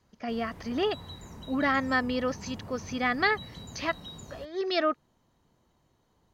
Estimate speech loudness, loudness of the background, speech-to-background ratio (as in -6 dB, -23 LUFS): -30.0 LUFS, -45.0 LUFS, 15.0 dB